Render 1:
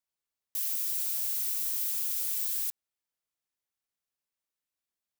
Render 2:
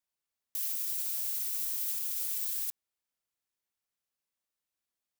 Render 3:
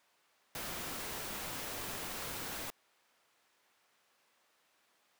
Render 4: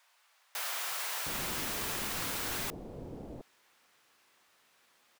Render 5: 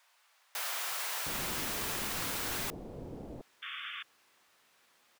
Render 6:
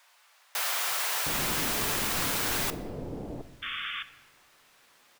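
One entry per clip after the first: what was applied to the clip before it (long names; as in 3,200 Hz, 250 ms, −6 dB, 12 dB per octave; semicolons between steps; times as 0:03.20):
brickwall limiter −23.5 dBFS, peak gain reduction 5.5 dB
mid-hump overdrive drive 32 dB, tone 1,300 Hz, clips at −23 dBFS; level +1.5 dB
multiband delay without the direct sound highs, lows 710 ms, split 610 Hz; level +6 dB
sound drawn into the spectrogram noise, 0:03.62–0:04.03, 1,100–3,600 Hz −42 dBFS
rectangular room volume 910 cubic metres, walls mixed, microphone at 0.37 metres; level +6.5 dB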